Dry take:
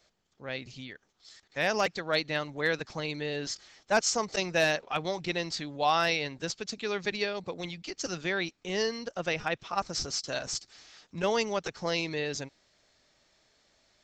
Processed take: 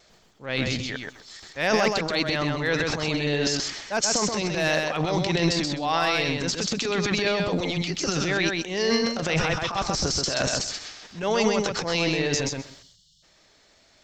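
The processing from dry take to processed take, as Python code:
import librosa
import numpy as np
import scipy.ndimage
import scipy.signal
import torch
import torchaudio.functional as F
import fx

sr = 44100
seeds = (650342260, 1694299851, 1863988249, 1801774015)

p1 = fx.vibrato(x, sr, rate_hz=1.1, depth_cents=12.0)
p2 = fx.rider(p1, sr, range_db=5, speed_s=0.5)
p3 = fx.transient(p2, sr, attack_db=-7, sustain_db=12)
p4 = fx.spec_erase(p3, sr, start_s=12.7, length_s=0.53, low_hz=210.0, high_hz=2800.0)
p5 = p4 + fx.echo_feedback(p4, sr, ms=129, feedback_pct=15, wet_db=-3.5, dry=0)
y = p5 * 10.0 ** (4.5 / 20.0)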